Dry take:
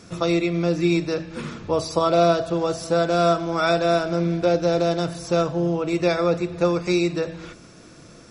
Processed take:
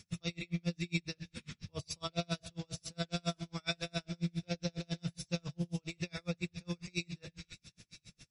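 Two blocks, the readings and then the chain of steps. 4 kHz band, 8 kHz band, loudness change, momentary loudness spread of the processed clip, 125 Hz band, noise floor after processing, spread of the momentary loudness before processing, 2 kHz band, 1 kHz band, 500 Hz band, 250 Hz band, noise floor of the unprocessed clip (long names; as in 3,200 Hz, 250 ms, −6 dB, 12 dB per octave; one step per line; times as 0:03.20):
−10.0 dB, −9.5 dB, −18.0 dB, 11 LU, −12.0 dB, −80 dBFS, 8 LU, −14.0 dB, −25.0 dB, −26.0 dB, −17.0 dB, −46 dBFS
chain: flat-topped bell 600 Hz −15.5 dB 2.9 octaves
on a send: delay with a high-pass on its return 508 ms, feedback 54%, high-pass 3,700 Hz, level −10.5 dB
on the sum: tremolo with a sine in dB 7.3 Hz, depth 40 dB
level −3 dB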